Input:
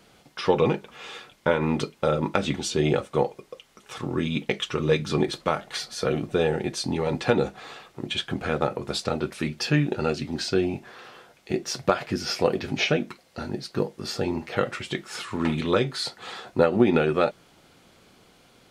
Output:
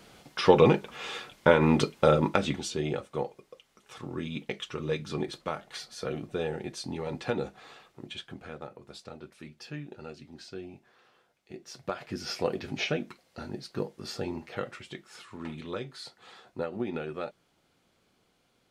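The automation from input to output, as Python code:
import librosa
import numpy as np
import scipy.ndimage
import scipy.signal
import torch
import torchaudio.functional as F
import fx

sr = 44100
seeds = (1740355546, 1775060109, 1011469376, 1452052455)

y = fx.gain(x, sr, db=fx.line((2.11, 2.0), (2.87, -9.0), (7.85, -9.0), (8.67, -18.0), (11.53, -18.0), (12.25, -7.0), (14.2, -7.0), (15.16, -14.0)))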